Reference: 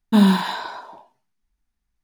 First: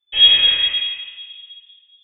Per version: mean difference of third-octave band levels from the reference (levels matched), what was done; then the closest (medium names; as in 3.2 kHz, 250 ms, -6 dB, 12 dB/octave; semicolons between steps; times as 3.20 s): 11.5 dB: simulated room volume 2100 m³, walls mixed, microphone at 4.2 m; frequency inversion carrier 3.5 kHz; trim -6.5 dB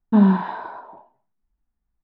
5.0 dB: low-pass 1.2 kHz 12 dB/octave; speakerphone echo 190 ms, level -28 dB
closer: second